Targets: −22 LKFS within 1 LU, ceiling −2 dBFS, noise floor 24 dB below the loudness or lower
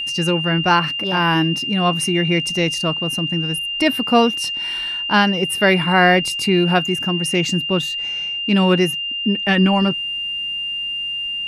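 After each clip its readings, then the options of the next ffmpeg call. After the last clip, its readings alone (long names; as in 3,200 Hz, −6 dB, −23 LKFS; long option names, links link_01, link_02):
interfering tone 2,800 Hz; level of the tone −22 dBFS; integrated loudness −17.5 LKFS; sample peak −2.0 dBFS; target loudness −22.0 LKFS
→ -af "bandreject=frequency=2800:width=30"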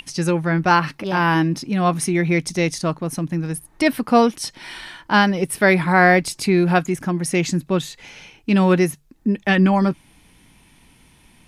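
interfering tone none found; integrated loudness −19.0 LKFS; sample peak −3.0 dBFS; target loudness −22.0 LKFS
→ -af "volume=-3dB"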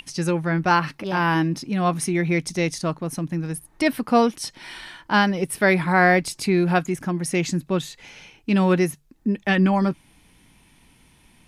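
integrated loudness −22.0 LKFS; sample peak −6.0 dBFS; background noise floor −57 dBFS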